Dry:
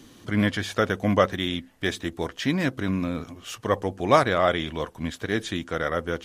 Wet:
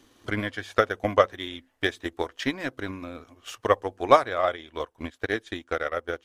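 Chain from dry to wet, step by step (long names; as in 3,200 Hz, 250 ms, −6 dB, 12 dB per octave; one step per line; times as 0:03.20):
parametric band 920 Hz +4 dB 2.9 octaves
transient designer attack +11 dB, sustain −3 dB, from 0:04.55 sustain −11 dB
parametric band 170 Hz −12.5 dB 0.77 octaves
level −9 dB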